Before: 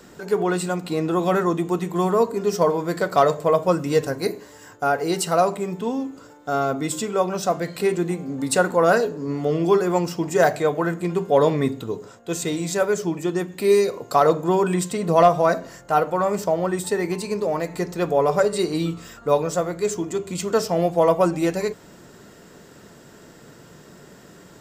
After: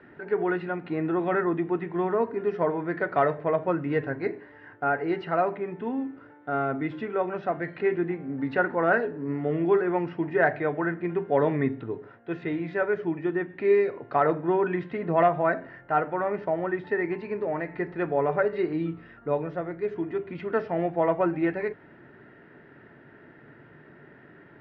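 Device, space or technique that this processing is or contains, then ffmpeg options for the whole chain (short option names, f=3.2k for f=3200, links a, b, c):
bass cabinet: -filter_complex "[0:a]lowpass=f=5.5k:w=0.5412,lowpass=f=5.5k:w=1.3066,highpass=70,equalizer=f=79:t=q:w=4:g=-10,equalizer=f=190:t=q:w=4:g=-10,equalizer=f=500:t=q:w=4:g=-8,equalizer=f=710:t=q:w=4:g=-3,equalizer=f=1.1k:t=q:w=4:g=-8,equalizer=f=1.8k:t=q:w=4:g=5,lowpass=f=2.2k:w=0.5412,lowpass=f=2.2k:w=1.3066,asettb=1/sr,asplit=3[a][b][c];[a]atrim=end=18.734[d];[b]atrim=start=18.73:end=19.96,asetpts=PTS-STARTPTS,afade=t=in:d=0.004:c=qsin,afade=t=out:st=1.226:d=0.004:c=qsin,equalizer=f=1.6k:t=o:w=2.6:g=-4.5[e];[c]atrim=start=19.956[f];[d][e]acrossfade=d=0.004:c1=hsin:c2=qsin[g];[g][f]acrossfade=d=0.004:c1=qsin:c2=hsin,volume=-1.5dB"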